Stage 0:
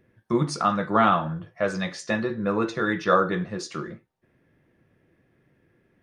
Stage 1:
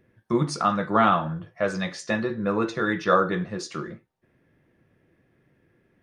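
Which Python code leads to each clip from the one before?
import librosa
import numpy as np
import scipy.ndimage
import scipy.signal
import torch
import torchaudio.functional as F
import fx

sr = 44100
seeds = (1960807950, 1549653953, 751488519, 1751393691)

y = x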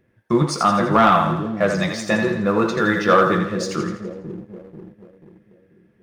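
y = fx.echo_split(x, sr, split_hz=450.0, low_ms=488, high_ms=83, feedback_pct=52, wet_db=-7.0)
y = fx.leveller(y, sr, passes=1)
y = y * librosa.db_to_amplitude(2.0)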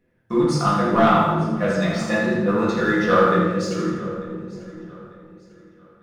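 y = fx.echo_feedback(x, sr, ms=895, feedback_pct=34, wet_db=-20.0)
y = fx.room_shoebox(y, sr, seeds[0], volume_m3=210.0, walls='mixed', distance_m=1.9)
y = y * librosa.db_to_amplitude(-8.5)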